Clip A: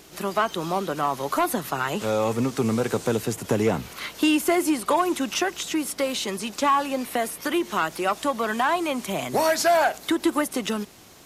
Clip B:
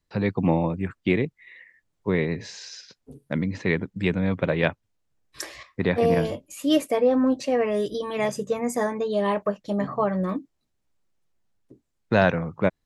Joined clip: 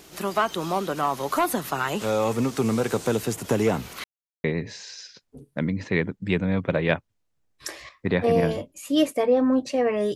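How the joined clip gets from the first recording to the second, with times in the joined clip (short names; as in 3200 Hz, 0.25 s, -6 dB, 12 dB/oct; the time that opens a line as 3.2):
clip A
4.04–4.44 mute
4.44 switch to clip B from 2.18 s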